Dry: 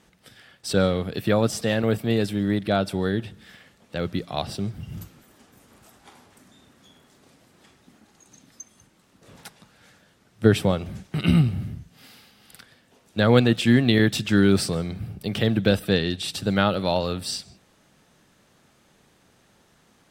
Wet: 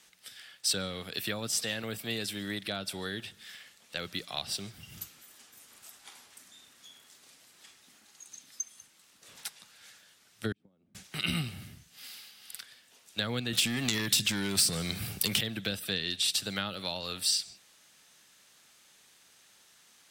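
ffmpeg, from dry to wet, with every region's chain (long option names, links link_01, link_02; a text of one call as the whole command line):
ffmpeg -i in.wav -filter_complex "[0:a]asettb=1/sr,asplit=3[link_01][link_02][link_03];[link_01]atrim=end=10.524[link_04];[link_02]atrim=start=10.52:end=10.95,asetpts=PTS-STARTPTS,afade=type=in:duration=0.004:curve=qsin,afade=type=out:start_time=0.426:duration=0.004:curve=qsin,acompressor=threshold=-29dB:ratio=10:attack=3.2:release=140:knee=1:detection=peak,bandpass=frequency=240:width_type=q:width=2.3,agate=range=-13dB:threshold=-37dB:ratio=16:release=100:detection=peak[link_05];[link_03]atrim=start=10.946[link_06];[link_04][link_05]acrossfade=duration=0.004:curve1=hsin:curve2=qsin[link_07];[link_07][link_06]acrossfade=duration=0.004:curve1=qsin:curve2=hsin,asettb=1/sr,asplit=3[link_08][link_09][link_10];[link_08]atrim=end=13.534[link_11];[link_09]atrim=start=13.53:end=15.41,asetpts=PTS-STARTPTS,afade=type=in:duration=0.004:curve=qsin,afade=type=out:start_time=1.876:duration=0.004:curve=qsin,highshelf=frequency=5500:gain=6.5,acompressor=threshold=-21dB:ratio=6:attack=3.2:release=140:knee=1:detection=peak,aeval=exprs='0.266*sin(PI/2*2.24*val(0)/0.266)':channel_layout=same[link_12];[link_10]atrim=start=15.406[link_13];[link_11][link_12]acrossfade=duration=0.004:curve1=hsin:curve2=qsin[link_14];[link_14][link_13]acrossfade=duration=0.004:curve1=qsin:curve2=hsin,lowshelf=frequency=220:gain=-6,acrossover=split=290[link_15][link_16];[link_16]acompressor=threshold=-28dB:ratio=10[link_17];[link_15][link_17]amix=inputs=2:normalize=0,tiltshelf=frequency=1400:gain=-9.5,volume=-3dB" out.wav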